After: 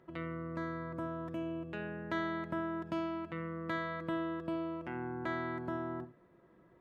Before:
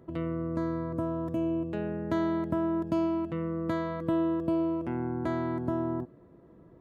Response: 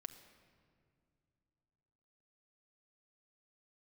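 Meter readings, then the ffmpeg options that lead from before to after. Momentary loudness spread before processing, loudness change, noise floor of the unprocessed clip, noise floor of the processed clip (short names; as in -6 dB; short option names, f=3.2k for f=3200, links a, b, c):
5 LU, -8.0 dB, -56 dBFS, -64 dBFS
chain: -filter_complex "[0:a]equalizer=f=2.1k:w=0.38:g=14.5[a];[1:a]atrim=start_sample=2205,atrim=end_sample=3969[b];[a][b]afir=irnorm=-1:irlink=0,volume=-7.5dB"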